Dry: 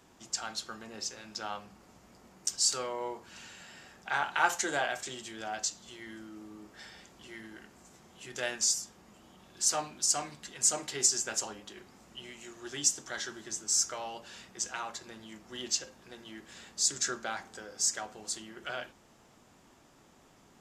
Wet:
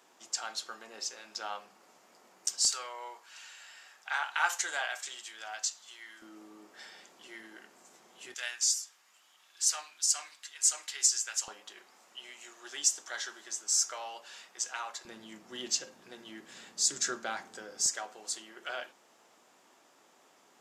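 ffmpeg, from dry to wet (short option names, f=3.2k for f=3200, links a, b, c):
-af "asetnsamples=n=441:p=0,asendcmd='2.65 highpass f 1000;6.22 highpass f 370;8.34 highpass f 1500;11.48 highpass f 630;15.05 highpass f 180;17.86 highpass f 420',highpass=450"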